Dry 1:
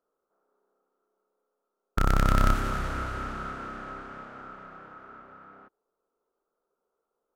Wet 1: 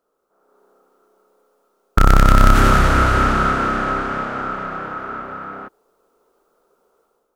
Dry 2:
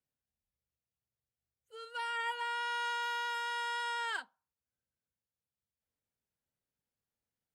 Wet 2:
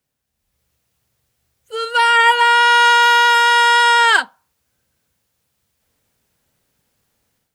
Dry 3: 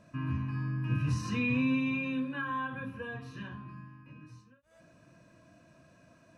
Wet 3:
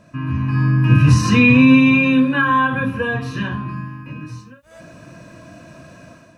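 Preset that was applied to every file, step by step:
level rider gain up to 10 dB; loudness maximiser +10 dB; peak normalisation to -2 dBFS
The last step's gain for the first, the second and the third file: -1.0 dB, +4.5 dB, -1.0 dB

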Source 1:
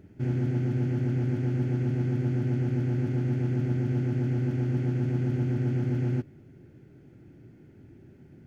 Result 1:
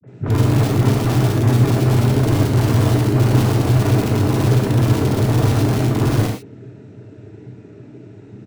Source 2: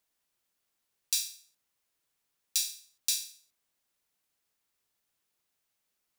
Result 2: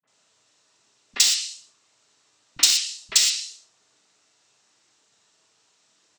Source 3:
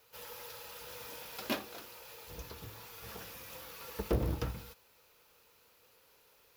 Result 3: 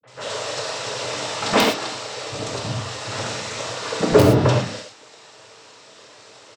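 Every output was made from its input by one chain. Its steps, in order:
low-pass that closes with the level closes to 2.4 kHz, closed at -25 dBFS; noise-vocoded speech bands 12; in parallel at -6 dB: integer overflow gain 23 dB; on the sum: three bands offset in time lows, mids, highs 30/70 ms, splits 180/2100 Hz; gated-style reverb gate 140 ms flat, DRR -0.5 dB; peak normalisation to -2 dBFS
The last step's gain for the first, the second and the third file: +8.5 dB, +14.5 dB, +16.5 dB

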